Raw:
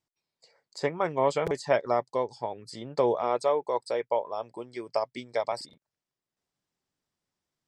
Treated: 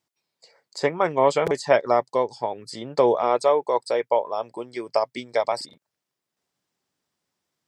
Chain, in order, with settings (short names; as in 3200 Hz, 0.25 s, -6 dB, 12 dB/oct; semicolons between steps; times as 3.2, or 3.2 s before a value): HPF 160 Hz 6 dB/oct; gain +6.5 dB